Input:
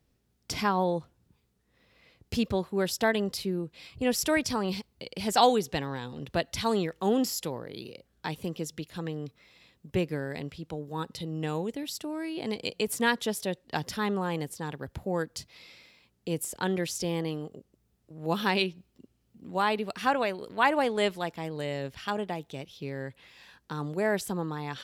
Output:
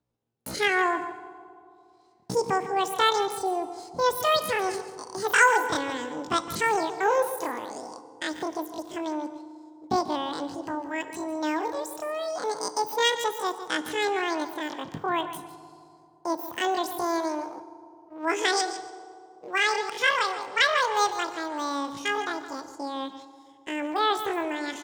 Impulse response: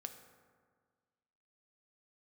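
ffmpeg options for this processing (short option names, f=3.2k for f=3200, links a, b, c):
-filter_complex "[0:a]asplit=2[a][b];[b]aecho=0:1:147|294|441:0.237|0.0569|0.0137[c];[a][c]amix=inputs=2:normalize=0,asetrate=88200,aresample=44100,atempo=0.5,agate=range=-13dB:threshold=-47dB:ratio=16:detection=peak,asplit=2[d][e];[1:a]atrim=start_sample=2205,asetrate=26901,aresample=44100,lowpass=8k[f];[e][f]afir=irnorm=-1:irlink=0,volume=1dB[g];[d][g]amix=inputs=2:normalize=0,volume=-2.5dB"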